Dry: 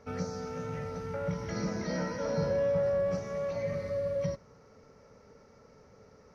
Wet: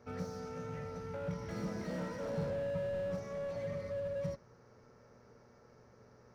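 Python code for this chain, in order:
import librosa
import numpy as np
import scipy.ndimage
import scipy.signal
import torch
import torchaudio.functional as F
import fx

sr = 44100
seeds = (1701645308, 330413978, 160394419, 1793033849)

y = fx.dmg_buzz(x, sr, base_hz=120.0, harmonics=15, level_db=-61.0, tilt_db=-4, odd_only=False)
y = fx.slew_limit(y, sr, full_power_hz=17.0)
y = y * 10.0 ** (-5.5 / 20.0)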